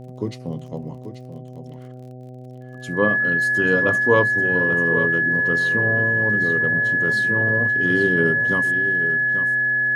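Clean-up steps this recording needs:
click removal
hum removal 126.5 Hz, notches 6
notch filter 1,700 Hz, Q 30
echo removal 836 ms −10.5 dB

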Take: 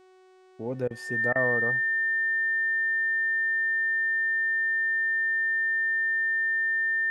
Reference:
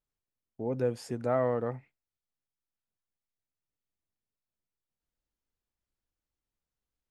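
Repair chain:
hum removal 372.8 Hz, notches 25
notch filter 1,800 Hz, Q 30
repair the gap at 0:00.88/0:01.33, 24 ms

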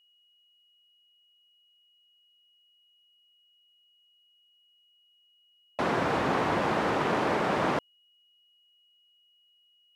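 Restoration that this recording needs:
notch filter 2,900 Hz, Q 30

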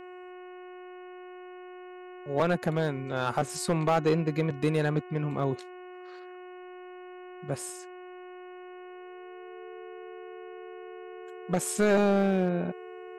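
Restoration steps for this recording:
clipped peaks rebuilt −17.5 dBFS
hum removal 363.6 Hz, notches 8
notch filter 440 Hz, Q 30

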